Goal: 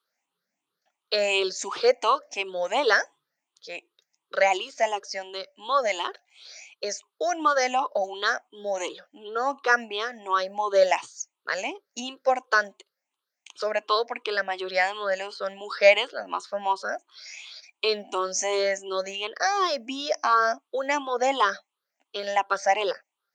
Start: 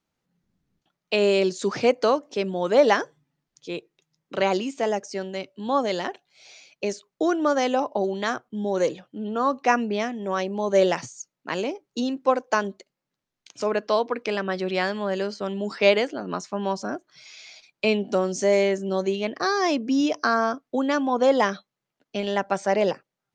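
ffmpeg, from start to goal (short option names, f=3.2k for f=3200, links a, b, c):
-af "afftfilt=real='re*pow(10,16/40*sin(2*PI*(0.63*log(max(b,1)*sr/1024/100)/log(2)-(2.8)*(pts-256)/sr)))':imag='im*pow(10,16/40*sin(2*PI*(0.63*log(max(b,1)*sr/1024/100)/log(2)-(2.8)*(pts-256)/sr)))':win_size=1024:overlap=0.75,highpass=680"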